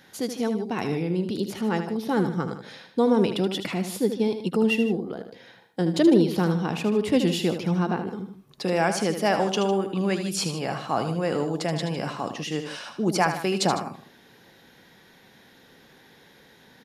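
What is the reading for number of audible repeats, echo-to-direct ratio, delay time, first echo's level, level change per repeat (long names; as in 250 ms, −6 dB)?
2, −8.0 dB, 77 ms, −9.0 dB, −5.5 dB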